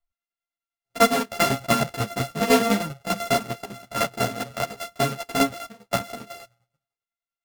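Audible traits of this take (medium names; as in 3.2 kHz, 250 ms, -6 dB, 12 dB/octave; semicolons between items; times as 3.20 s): a buzz of ramps at a fixed pitch in blocks of 64 samples; tremolo saw down 10 Hz, depth 70%; a shimmering, thickened sound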